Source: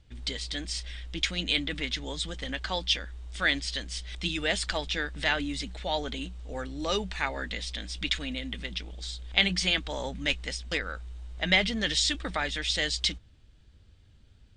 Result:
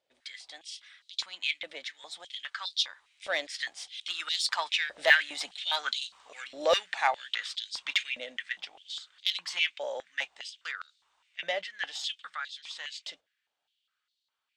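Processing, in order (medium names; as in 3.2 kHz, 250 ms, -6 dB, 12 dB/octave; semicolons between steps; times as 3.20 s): Doppler pass-by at 6.03 s, 13 m/s, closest 15 m; Chebyshev shaper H 8 -28 dB, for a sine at -12 dBFS; step-sequenced high-pass 4.9 Hz 580–4100 Hz; trim +1.5 dB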